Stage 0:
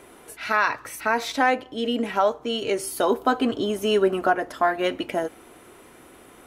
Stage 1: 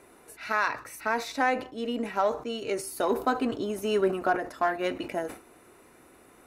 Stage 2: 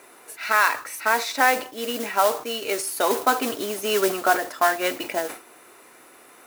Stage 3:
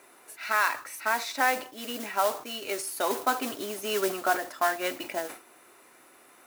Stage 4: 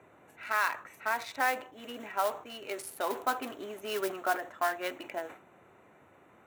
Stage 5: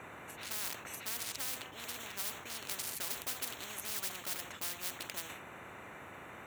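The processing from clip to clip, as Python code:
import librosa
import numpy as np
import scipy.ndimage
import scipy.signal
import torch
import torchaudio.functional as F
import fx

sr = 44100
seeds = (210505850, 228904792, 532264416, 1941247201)

y1 = fx.notch(x, sr, hz=3200.0, q=5.7)
y1 = fx.cheby_harmonics(y1, sr, harmonics=(7,), levels_db=(-32,), full_scale_db=-8.0)
y1 = fx.sustainer(y1, sr, db_per_s=140.0)
y1 = y1 * 10.0 ** (-5.0 / 20.0)
y2 = fx.mod_noise(y1, sr, seeds[0], snr_db=15)
y2 = fx.highpass(y2, sr, hz=760.0, slope=6)
y2 = y2 * 10.0 ** (9.0 / 20.0)
y3 = fx.notch(y2, sr, hz=460.0, q=12.0)
y3 = y3 * 10.0 ** (-6.0 / 20.0)
y4 = fx.wiener(y3, sr, points=9)
y4 = fx.low_shelf(y4, sr, hz=160.0, db=-11.0)
y4 = fx.dmg_noise_band(y4, sr, seeds[1], low_hz=78.0, high_hz=800.0, level_db=-59.0)
y4 = y4 * 10.0 ** (-3.5 / 20.0)
y5 = fx.spectral_comp(y4, sr, ratio=10.0)
y5 = y5 * 10.0 ** (-4.5 / 20.0)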